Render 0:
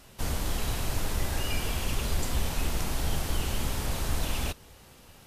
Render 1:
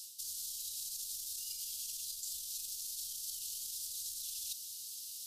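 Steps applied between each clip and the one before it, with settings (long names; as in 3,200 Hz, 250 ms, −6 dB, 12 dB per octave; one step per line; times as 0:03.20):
brickwall limiter −27 dBFS, peak gain reduction 10.5 dB
inverse Chebyshev high-pass filter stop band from 2,200 Hz, stop band 40 dB
reversed playback
downward compressor 6 to 1, threshold −55 dBFS, peak gain reduction 13.5 dB
reversed playback
level +15 dB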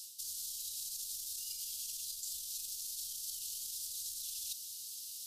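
no processing that can be heard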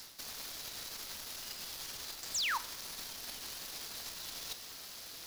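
running median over 5 samples
sound drawn into the spectrogram fall, 0:02.34–0:02.58, 820–8,300 Hz −38 dBFS
convolution reverb, pre-delay 3 ms, DRR 12.5 dB
level +4.5 dB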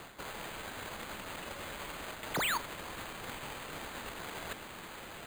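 bad sample-rate conversion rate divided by 8×, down none, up hold
level +1.5 dB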